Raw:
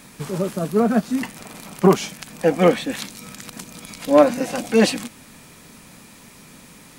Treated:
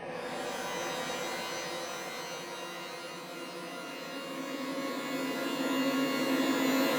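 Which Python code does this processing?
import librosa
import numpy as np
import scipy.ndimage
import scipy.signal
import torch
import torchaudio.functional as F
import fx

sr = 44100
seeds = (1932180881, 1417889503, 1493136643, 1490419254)

y = fx.wiener(x, sr, points=15)
y = scipy.signal.sosfilt(scipy.signal.butter(2, 150.0, 'highpass', fs=sr, output='sos'), y)
y = fx.tilt_eq(y, sr, slope=1.5)
y = fx.gate_flip(y, sr, shuts_db=-14.0, range_db=-35)
y = fx.paulstretch(y, sr, seeds[0], factor=27.0, window_s=0.5, from_s=2.55)
y = scipy.signal.savgol_filter(y, 15, 4, mode='constant')
y = fx.doubler(y, sr, ms=12.0, db=-7.5)
y = y + 10.0 ** (-5.0 / 20.0) * np.pad(y, (int(744 * sr / 1000.0), 0))[:len(y)]
y = fx.rev_shimmer(y, sr, seeds[1], rt60_s=1.6, semitones=12, shimmer_db=-2, drr_db=-2.0)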